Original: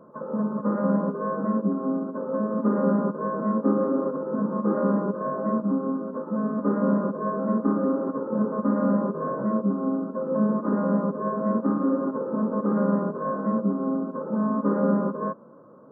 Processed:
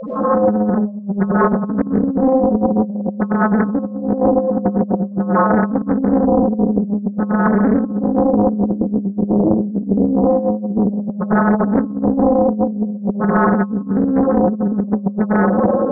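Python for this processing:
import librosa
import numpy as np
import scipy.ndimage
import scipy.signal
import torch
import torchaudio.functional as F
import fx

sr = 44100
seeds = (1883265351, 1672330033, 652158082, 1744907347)

y = fx.delta_mod(x, sr, bps=64000, step_db=-21.5)
y = fx.sample_hold(y, sr, seeds[0], rate_hz=1400.0, jitter_pct=0, at=(8.31, 10.61))
y = fx.spec_topn(y, sr, count=2)
y = fx.air_absorb(y, sr, metres=120.0)
y = fx.echo_tape(y, sr, ms=288, feedback_pct=67, wet_db=-24, lp_hz=1300.0, drive_db=17.0, wow_cents=16)
y = fx.rev_freeverb(y, sr, rt60_s=1.4, hf_ratio=0.95, predelay_ms=60, drr_db=-10.0)
y = fx.over_compress(y, sr, threshold_db=-22.0, ratio=-0.5)
y = fx.doppler_dist(y, sr, depth_ms=0.71)
y = F.gain(torch.from_numpy(y), 7.0).numpy()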